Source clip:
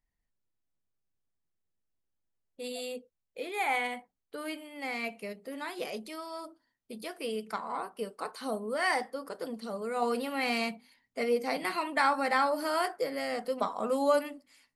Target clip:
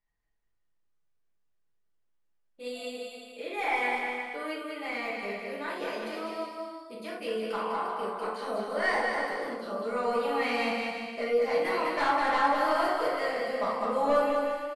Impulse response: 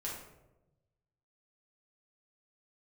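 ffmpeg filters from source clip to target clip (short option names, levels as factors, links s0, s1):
-filter_complex "[0:a]aeval=exprs='0.251*sin(PI/2*2.24*val(0)/0.251)':c=same,asplit=2[s0][s1];[s1]highpass=f=720:p=1,volume=1.58,asoftclip=type=tanh:threshold=0.251[s2];[s0][s2]amix=inputs=2:normalize=0,lowpass=f=2600:p=1,volume=0.501,aecho=1:1:200|350|462.5|546.9|610.2:0.631|0.398|0.251|0.158|0.1[s3];[1:a]atrim=start_sample=2205,afade=t=out:st=0.16:d=0.01,atrim=end_sample=7497[s4];[s3][s4]afir=irnorm=-1:irlink=0,volume=0.398"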